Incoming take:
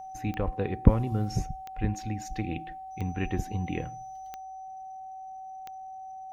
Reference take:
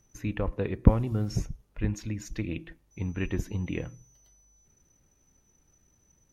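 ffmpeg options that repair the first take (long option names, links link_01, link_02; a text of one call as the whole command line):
ffmpeg -i in.wav -af "adeclick=threshold=4,bandreject=frequency=760:width=30,asetnsamples=nb_out_samples=441:pad=0,asendcmd='4.36 volume volume 5dB',volume=0dB" out.wav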